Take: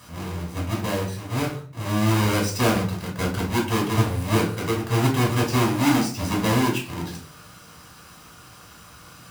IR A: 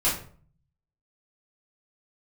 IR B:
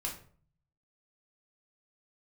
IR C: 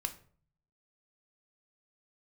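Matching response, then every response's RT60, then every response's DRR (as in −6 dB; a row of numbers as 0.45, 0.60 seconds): B; 0.50, 0.50, 0.50 seconds; −10.0, −2.0, 7.0 decibels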